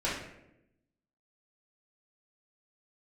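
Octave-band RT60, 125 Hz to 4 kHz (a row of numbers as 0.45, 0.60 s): 1.1, 1.2, 1.0, 0.75, 0.75, 0.55 s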